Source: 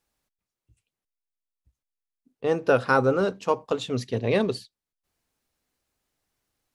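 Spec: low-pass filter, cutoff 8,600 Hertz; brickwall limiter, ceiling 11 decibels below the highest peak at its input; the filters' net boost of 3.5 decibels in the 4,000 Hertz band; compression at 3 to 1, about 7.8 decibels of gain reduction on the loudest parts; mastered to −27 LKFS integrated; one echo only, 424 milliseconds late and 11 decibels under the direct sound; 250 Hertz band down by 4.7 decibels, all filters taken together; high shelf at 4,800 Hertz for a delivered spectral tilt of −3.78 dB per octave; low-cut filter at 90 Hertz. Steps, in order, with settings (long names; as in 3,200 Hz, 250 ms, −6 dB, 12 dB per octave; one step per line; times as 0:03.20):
high-pass filter 90 Hz
low-pass filter 8,600 Hz
parametric band 250 Hz −6 dB
parametric band 4,000 Hz +8 dB
high-shelf EQ 4,800 Hz −8.5 dB
downward compressor 3 to 1, threshold −26 dBFS
brickwall limiter −23.5 dBFS
single-tap delay 424 ms −11 dB
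level +8 dB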